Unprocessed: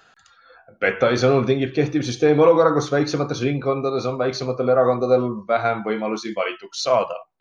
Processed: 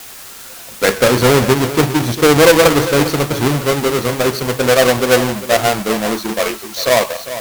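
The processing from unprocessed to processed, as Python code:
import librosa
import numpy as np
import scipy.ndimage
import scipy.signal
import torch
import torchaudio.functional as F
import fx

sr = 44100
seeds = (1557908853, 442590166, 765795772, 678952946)

y = fx.halfwave_hold(x, sr)
y = fx.quant_dither(y, sr, seeds[0], bits=6, dither='triangular')
y = fx.vibrato(y, sr, rate_hz=4.6, depth_cents=40.0)
y = y + 10.0 ** (-13.0 / 20.0) * np.pad(y, (int(400 * sr / 1000.0), 0))[:len(y)]
y = y * librosa.db_to_amplitude(2.0)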